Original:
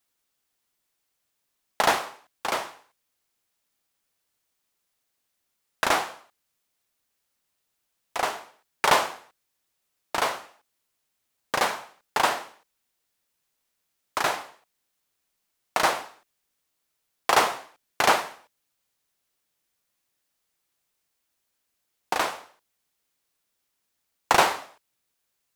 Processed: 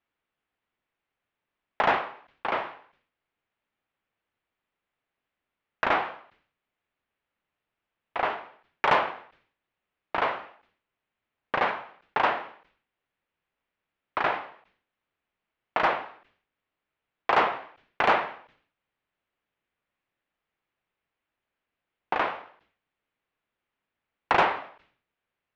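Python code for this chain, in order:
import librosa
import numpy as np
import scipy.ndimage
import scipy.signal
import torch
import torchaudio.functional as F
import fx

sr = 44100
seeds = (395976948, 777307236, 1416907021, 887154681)

y = scipy.signal.sosfilt(scipy.signal.butter(4, 2800.0, 'lowpass', fs=sr, output='sos'), x)
y = 10.0 ** (-11.5 / 20.0) * np.tanh(y / 10.0 ** (-11.5 / 20.0))
y = fx.sustainer(y, sr, db_per_s=110.0)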